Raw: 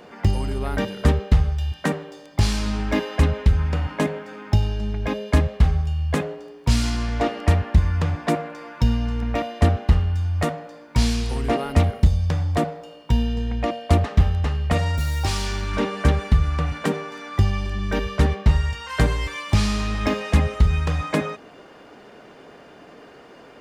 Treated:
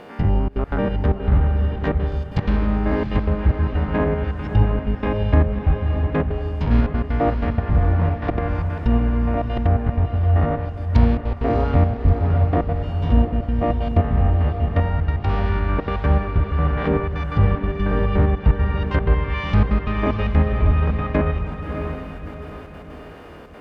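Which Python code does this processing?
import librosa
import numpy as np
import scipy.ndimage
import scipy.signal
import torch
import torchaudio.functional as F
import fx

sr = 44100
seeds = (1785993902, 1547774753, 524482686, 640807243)

p1 = fx.spec_steps(x, sr, hold_ms=100)
p2 = scipy.signal.sosfilt(scipy.signal.butter(2, 3500.0, 'lowpass', fs=sr, output='sos'), p1)
p3 = fx.rider(p2, sr, range_db=4, speed_s=0.5)
p4 = p2 + (p3 * librosa.db_to_amplitude(1.5))
p5 = fx.step_gate(p4, sr, bpm=188, pattern='xxxxxx.x.xxx.x.x', floor_db=-24.0, edge_ms=4.5)
p6 = fx.quant_dither(p5, sr, seeds[0], bits=10, dither='none')
p7 = fx.env_lowpass_down(p6, sr, base_hz=1600.0, full_db=-14.0)
p8 = p7 + fx.echo_diffused(p7, sr, ms=648, feedback_pct=43, wet_db=-6.0, dry=0)
y = p8 * librosa.db_to_amplitude(-2.5)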